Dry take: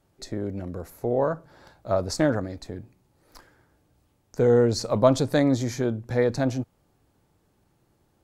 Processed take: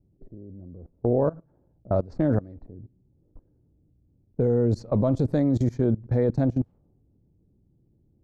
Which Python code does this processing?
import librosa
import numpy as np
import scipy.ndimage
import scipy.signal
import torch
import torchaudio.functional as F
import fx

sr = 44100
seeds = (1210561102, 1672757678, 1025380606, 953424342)

y = fx.tilt_shelf(x, sr, db=9.5, hz=730.0)
y = fx.level_steps(y, sr, step_db=21)
y = fx.env_lowpass(y, sr, base_hz=350.0, full_db=-19.0)